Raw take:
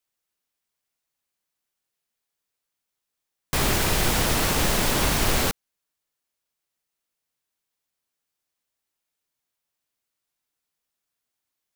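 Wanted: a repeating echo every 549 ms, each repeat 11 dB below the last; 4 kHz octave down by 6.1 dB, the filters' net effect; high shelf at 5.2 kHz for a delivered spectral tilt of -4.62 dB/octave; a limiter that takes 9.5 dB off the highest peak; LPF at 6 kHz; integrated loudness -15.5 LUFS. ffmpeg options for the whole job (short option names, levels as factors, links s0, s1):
-af "lowpass=6000,equalizer=f=4000:t=o:g=-4.5,highshelf=f=5200:g=-6,alimiter=limit=0.1:level=0:latency=1,aecho=1:1:549|1098|1647:0.282|0.0789|0.0221,volume=5.62"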